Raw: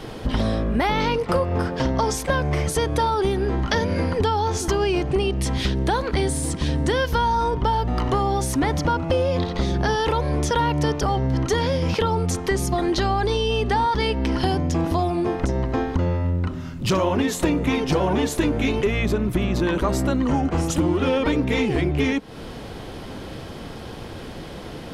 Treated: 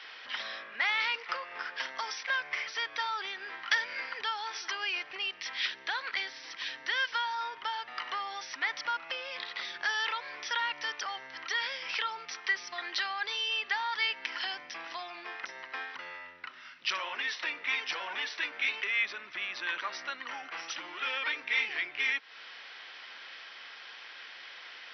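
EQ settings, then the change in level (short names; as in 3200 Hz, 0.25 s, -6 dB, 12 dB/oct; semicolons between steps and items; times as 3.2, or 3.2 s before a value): resonant high-pass 1900 Hz, resonance Q 1.7; brick-wall FIR low-pass 6000 Hz; high shelf 4600 Hz -7 dB; -3.0 dB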